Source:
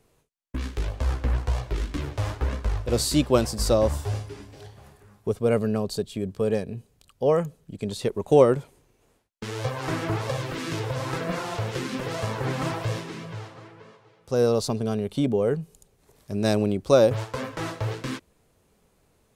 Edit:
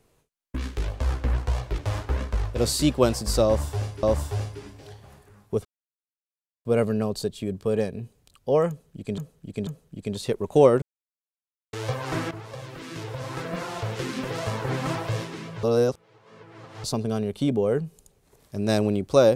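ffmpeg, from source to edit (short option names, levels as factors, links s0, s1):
-filter_complex "[0:a]asplit=11[s0][s1][s2][s3][s4][s5][s6][s7][s8][s9][s10];[s0]atrim=end=1.782[s11];[s1]atrim=start=2.098:end=4.352[s12];[s2]atrim=start=3.768:end=5.39,asetpts=PTS-STARTPTS,afade=t=out:st=1.618:d=0.004:c=hsin,apad=pad_dur=1[s13];[s3]atrim=start=5.39:end=7.922,asetpts=PTS-STARTPTS,afade=t=in:d=0.004:c=hsin[s14];[s4]atrim=start=7.428:end=7.922[s15];[s5]atrim=start=7.428:end=8.58,asetpts=PTS-STARTPTS,afade=t=out:st=1.148:d=0.004:c=hsin[s16];[s6]atrim=start=8.58:end=9.49,asetpts=PTS-STARTPTS,volume=0[s17];[s7]atrim=start=9.49:end=10.07,asetpts=PTS-STARTPTS,afade=t=in:d=0.004:c=hsin,afade=t=out:st=0.576:d=0.004:c=hsin:silence=0.211349[s18];[s8]atrim=start=10.07:end=13.392,asetpts=PTS-STARTPTS,afade=t=in:d=1.84:silence=0.211349[s19];[s9]atrim=start=13.388:end=14.602,asetpts=PTS-STARTPTS,areverse[s20];[s10]atrim=start=14.598[s21];[s11][s12]acrossfade=d=0.004:c1=hsin:c2=hsin[s22];[s13][s14]concat=n=2:v=0:a=1[s23];[s22][s23]acrossfade=d=0.004:c1=hsin:c2=hsin[s24];[s24][s15]acrossfade=d=0.004:c1=hsin:c2=hsin[s25];[s16][s17][s18][s19]concat=n=4:v=0:a=1[s26];[s25][s26]acrossfade=d=0.004:c1=hsin:c2=hsin[s27];[s27][s20]acrossfade=d=0.004:c1=hsin:c2=hsin[s28];[s28][s21]acrossfade=d=0.004:c1=hsin:c2=hsin"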